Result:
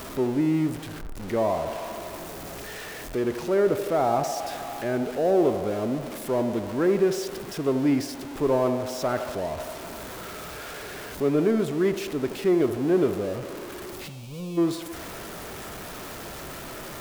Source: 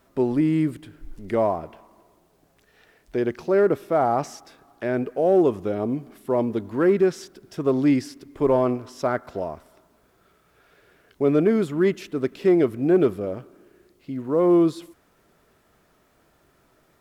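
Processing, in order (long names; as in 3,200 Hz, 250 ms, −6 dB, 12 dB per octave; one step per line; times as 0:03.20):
converter with a step at zero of −28 dBFS
gain on a spectral selection 0:14.08–0:14.58, 230–2,200 Hz −20 dB
feedback echo with a band-pass in the loop 77 ms, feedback 81%, band-pass 670 Hz, level −9 dB
level −4.5 dB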